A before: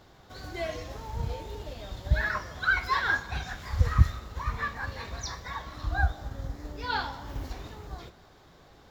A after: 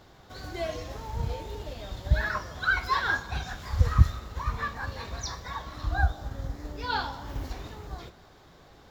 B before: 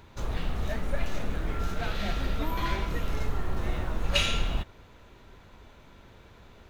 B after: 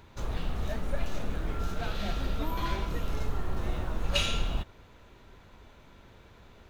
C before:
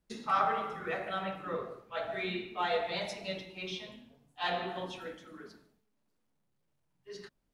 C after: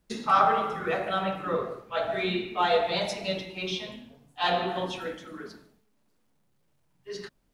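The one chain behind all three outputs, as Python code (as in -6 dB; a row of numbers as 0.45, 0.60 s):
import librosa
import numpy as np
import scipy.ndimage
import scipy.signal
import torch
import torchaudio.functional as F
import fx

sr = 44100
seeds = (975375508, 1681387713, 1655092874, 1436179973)

y = fx.dynamic_eq(x, sr, hz=2000.0, q=2.5, threshold_db=-49.0, ratio=4.0, max_db=-5)
y = y * 10.0 ** (-30 / 20.0) / np.sqrt(np.mean(np.square(y)))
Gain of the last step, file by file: +1.5, -1.5, +8.0 dB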